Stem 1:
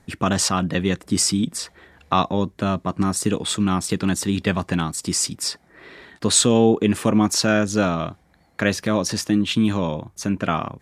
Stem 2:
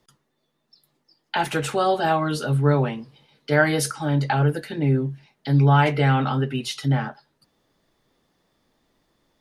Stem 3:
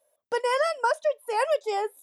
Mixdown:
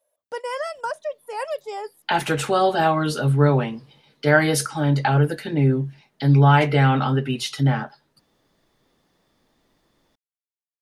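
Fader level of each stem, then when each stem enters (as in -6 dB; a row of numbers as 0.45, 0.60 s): off, +2.0 dB, -4.0 dB; off, 0.75 s, 0.00 s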